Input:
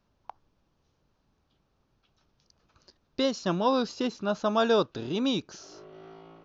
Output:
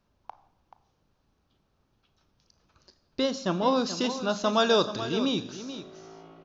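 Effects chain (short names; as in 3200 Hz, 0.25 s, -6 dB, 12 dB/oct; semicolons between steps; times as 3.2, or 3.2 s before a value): 3.86–5.14 high shelf 2800 Hz +10 dB; echo 0.431 s -11.5 dB; on a send at -13 dB: reverb RT60 0.80 s, pre-delay 26 ms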